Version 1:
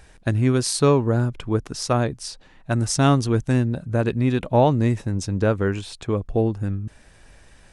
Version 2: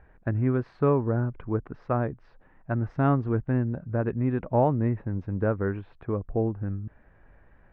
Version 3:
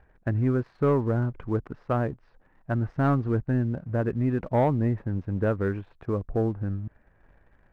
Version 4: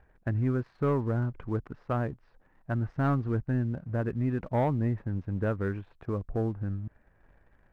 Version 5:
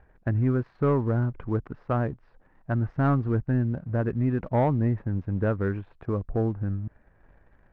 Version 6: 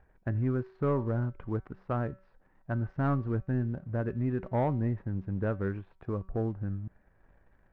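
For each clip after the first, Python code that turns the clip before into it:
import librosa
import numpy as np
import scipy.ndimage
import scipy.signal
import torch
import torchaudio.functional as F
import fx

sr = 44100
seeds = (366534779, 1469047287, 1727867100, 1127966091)

y1 = scipy.signal.sosfilt(scipy.signal.butter(4, 1800.0, 'lowpass', fs=sr, output='sos'), x)
y1 = F.gain(torch.from_numpy(y1), -5.5).numpy()
y2 = fx.leveller(y1, sr, passes=1)
y2 = F.gain(torch.from_numpy(y2), -2.5).numpy()
y3 = fx.dynamic_eq(y2, sr, hz=470.0, q=0.74, threshold_db=-37.0, ratio=4.0, max_db=-3)
y3 = F.gain(torch.from_numpy(y3), -2.5).numpy()
y4 = fx.lowpass(y3, sr, hz=2600.0, slope=6)
y4 = F.gain(torch.from_numpy(y4), 4.0).numpy()
y5 = fx.comb_fb(y4, sr, f0_hz=190.0, decay_s=0.48, harmonics='all', damping=0.0, mix_pct=50)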